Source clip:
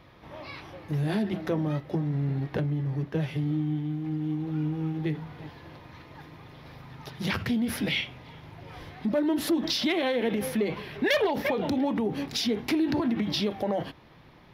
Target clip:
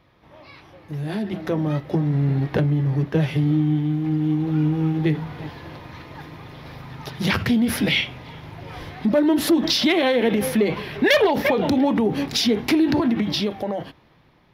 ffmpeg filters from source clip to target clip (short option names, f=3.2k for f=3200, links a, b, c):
-af "dynaudnorm=f=230:g=13:m=14dB,volume=-4.5dB"